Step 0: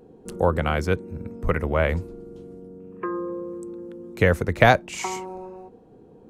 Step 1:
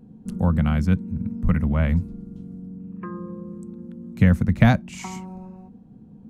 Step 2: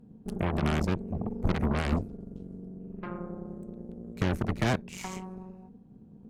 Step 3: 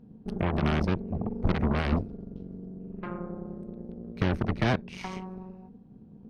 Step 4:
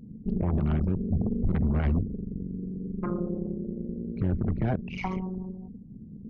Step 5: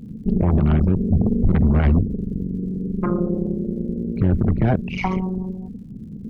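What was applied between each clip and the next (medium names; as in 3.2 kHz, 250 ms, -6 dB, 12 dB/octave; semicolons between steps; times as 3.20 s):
resonant low shelf 290 Hz +10 dB, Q 3; trim -6 dB
peak limiter -13.5 dBFS, peak gain reduction 9.5 dB; Chebyshev shaper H 2 -6 dB, 8 -13 dB, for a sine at -13.5 dBFS; trim -6 dB
Savitzky-Golay filter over 15 samples; trim +1.5 dB
resonances exaggerated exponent 2; peak limiter -23.5 dBFS, peak gain reduction 9.5 dB; trim +6.5 dB
crackle 99 per s -58 dBFS; trim +9 dB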